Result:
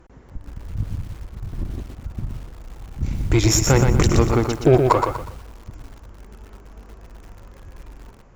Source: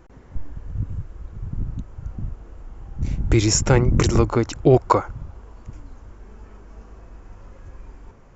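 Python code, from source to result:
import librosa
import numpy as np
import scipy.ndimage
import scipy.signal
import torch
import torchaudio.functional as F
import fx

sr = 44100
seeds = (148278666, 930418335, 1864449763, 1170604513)

y = fx.lower_of_two(x, sr, delay_ms=2.7, at=(1.52, 2.03), fade=0.02)
y = fx.cheby_harmonics(y, sr, harmonics=(3, 4, 8), levels_db=(-45, -34, -26), full_scale_db=-2.0)
y = fx.echo_crushed(y, sr, ms=121, feedback_pct=35, bits=7, wet_db=-5.0)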